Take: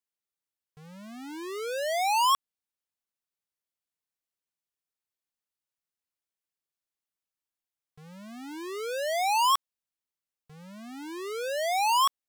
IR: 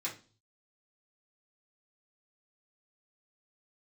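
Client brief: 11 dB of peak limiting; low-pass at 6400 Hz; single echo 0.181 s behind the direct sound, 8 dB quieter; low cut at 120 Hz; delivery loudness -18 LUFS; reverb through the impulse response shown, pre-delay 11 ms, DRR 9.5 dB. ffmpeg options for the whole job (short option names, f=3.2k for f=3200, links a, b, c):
-filter_complex "[0:a]highpass=120,lowpass=6.4k,alimiter=level_in=5.5dB:limit=-24dB:level=0:latency=1,volume=-5.5dB,aecho=1:1:181:0.398,asplit=2[a][b];[1:a]atrim=start_sample=2205,adelay=11[c];[b][c]afir=irnorm=-1:irlink=0,volume=-11.5dB[d];[a][d]amix=inputs=2:normalize=0,volume=16dB"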